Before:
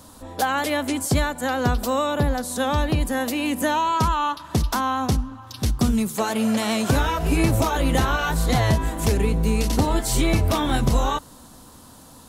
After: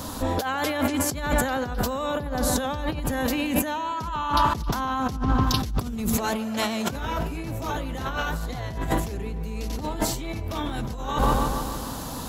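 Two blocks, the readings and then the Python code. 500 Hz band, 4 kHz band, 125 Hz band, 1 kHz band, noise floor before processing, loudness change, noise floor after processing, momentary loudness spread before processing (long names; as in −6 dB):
−4.0 dB, −3.0 dB, −6.5 dB, −2.5 dB, −46 dBFS, −4.5 dB, −33 dBFS, 4 LU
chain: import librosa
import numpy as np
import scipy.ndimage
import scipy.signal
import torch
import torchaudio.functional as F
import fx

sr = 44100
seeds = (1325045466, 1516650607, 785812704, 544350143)

y = fx.echo_wet_lowpass(x, sr, ms=148, feedback_pct=58, hz=2400.0, wet_db=-11.5)
y = fx.over_compress(y, sr, threshold_db=-31.0, ratio=-1.0)
y = fx.peak_eq(y, sr, hz=9000.0, db=-11.0, octaves=0.25)
y = y * 10.0 ** (4.0 / 20.0)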